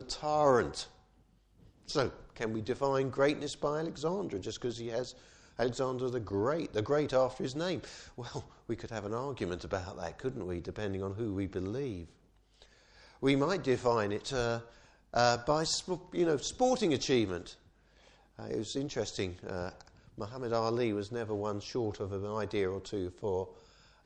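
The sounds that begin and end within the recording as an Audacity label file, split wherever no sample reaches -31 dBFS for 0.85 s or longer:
1.900000	11.950000	sound
13.230000	17.370000	sound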